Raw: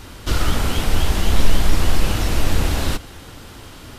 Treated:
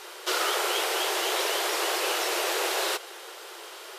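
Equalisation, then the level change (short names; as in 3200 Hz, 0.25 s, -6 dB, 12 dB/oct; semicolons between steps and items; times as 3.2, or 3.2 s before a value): brick-wall FIR high-pass 340 Hz; 0.0 dB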